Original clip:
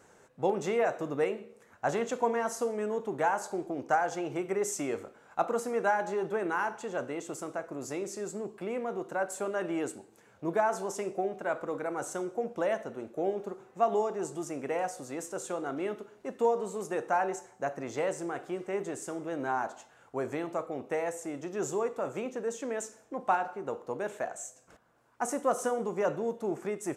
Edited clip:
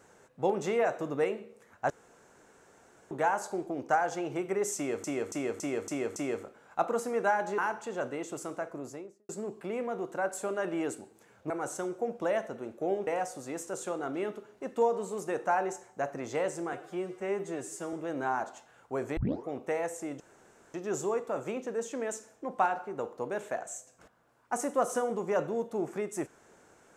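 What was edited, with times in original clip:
1.9–3.11 room tone
4.76–5.04 loop, 6 plays
6.18–6.55 cut
7.62–8.26 studio fade out
10.47–11.86 cut
13.43–14.7 cut
18.36–19.16 stretch 1.5×
20.4 tape start 0.31 s
21.43 insert room tone 0.54 s

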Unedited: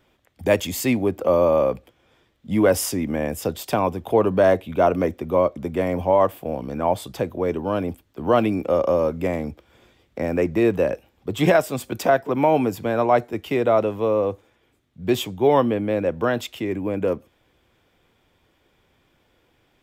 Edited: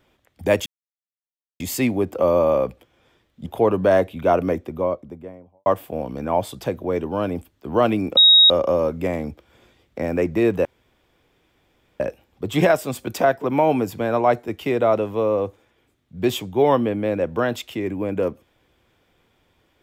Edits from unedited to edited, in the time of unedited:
0.66 insert silence 0.94 s
2.52–3.99 cut
4.87–6.19 studio fade out
8.7 add tone 3780 Hz -8 dBFS 0.33 s
10.85 insert room tone 1.35 s

